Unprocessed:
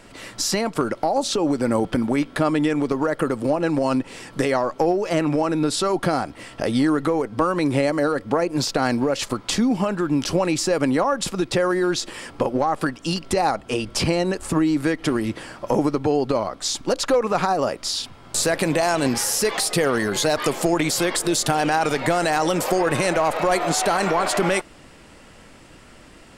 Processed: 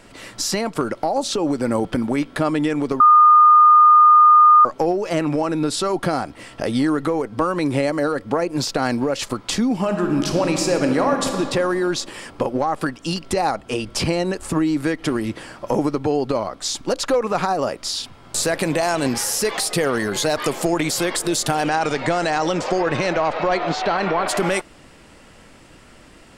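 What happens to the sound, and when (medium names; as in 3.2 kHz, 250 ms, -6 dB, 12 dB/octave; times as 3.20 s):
3.00–4.65 s: bleep 1.22 kHz -7 dBFS
9.79–11.34 s: reverb throw, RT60 2.3 s, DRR 3.5 dB
21.68–24.27 s: low-pass 8.5 kHz -> 4 kHz 24 dB/octave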